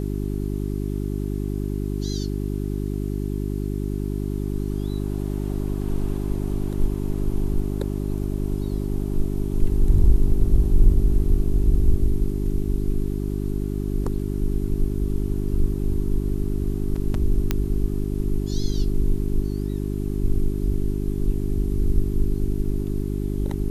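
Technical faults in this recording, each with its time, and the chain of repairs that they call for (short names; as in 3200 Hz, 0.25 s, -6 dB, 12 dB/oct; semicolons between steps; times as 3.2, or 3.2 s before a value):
hum 50 Hz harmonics 8 -26 dBFS
17.51 pop -8 dBFS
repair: de-click; de-hum 50 Hz, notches 8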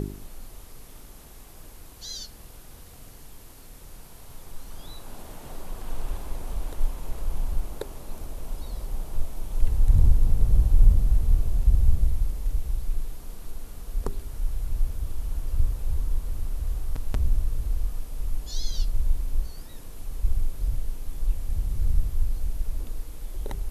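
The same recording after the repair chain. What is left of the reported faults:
none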